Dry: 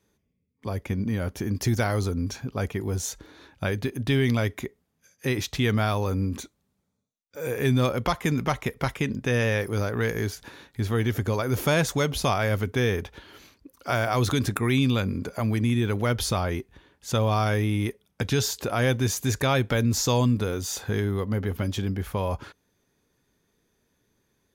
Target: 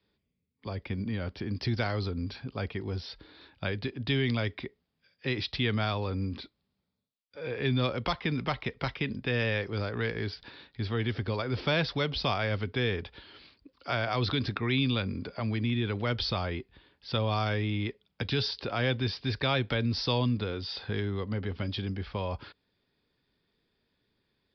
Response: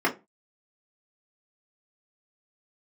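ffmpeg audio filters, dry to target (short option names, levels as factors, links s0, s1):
-filter_complex "[0:a]acrossover=split=290|480|2500[s0][s1][s2][s3];[s3]acontrast=87[s4];[s0][s1][s2][s4]amix=inputs=4:normalize=0,aresample=11025,aresample=44100,volume=0.501"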